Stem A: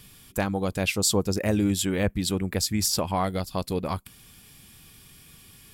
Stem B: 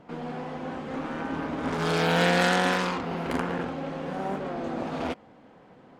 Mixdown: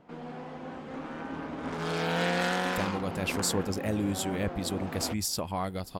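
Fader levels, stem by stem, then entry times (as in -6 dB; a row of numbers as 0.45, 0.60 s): -6.5, -6.0 dB; 2.40, 0.00 s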